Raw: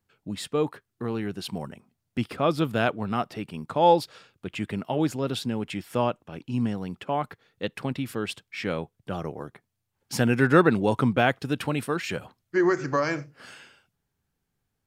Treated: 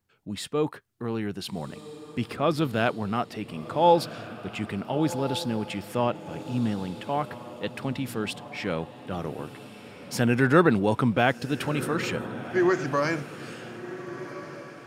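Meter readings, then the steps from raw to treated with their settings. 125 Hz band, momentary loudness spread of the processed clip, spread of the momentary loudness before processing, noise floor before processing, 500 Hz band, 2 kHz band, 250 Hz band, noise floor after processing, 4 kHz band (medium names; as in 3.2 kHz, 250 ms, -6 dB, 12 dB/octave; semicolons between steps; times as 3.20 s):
0.0 dB, 16 LU, 15 LU, -80 dBFS, -0.5 dB, 0.0 dB, 0.0 dB, -46 dBFS, +0.5 dB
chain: transient shaper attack -2 dB, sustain +2 dB; echo that smears into a reverb 1417 ms, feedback 42%, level -13 dB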